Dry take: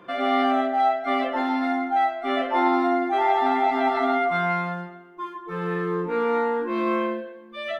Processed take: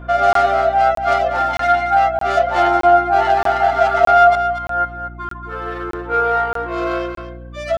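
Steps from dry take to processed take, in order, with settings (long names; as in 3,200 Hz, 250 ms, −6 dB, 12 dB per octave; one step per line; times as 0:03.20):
stylus tracing distortion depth 0.16 ms
in parallel at −9 dB: hard clipping −19.5 dBFS, distortion −13 dB
0:01.53–0:01.94: on the sum: high shelf with overshoot 1,600 Hz +6 dB, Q 1.5
0:04.35–0:04.85: compressor whose output falls as the input rises −30 dBFS, ratio −0.5
linear-phase brick-wall high-pass 280 Hz
hollow resonant body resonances 680/1,400 Hz, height 16 dB, ringing for 45 ms
on a send at −12 dB: parametric band 1,100 Hz +5 dB 1.5 octaves + convolution reverb RT60 0.55 s, pre-delay 10 ms
on the sum: reverb reduction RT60 0.61 s
single-tap delay 232 ms −9 dB
mains hum 60 Hz, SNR 18 dB
regular buffer underruns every 0.62 s, samples 1,024, zero, from 0:00.33
level −1.5 dB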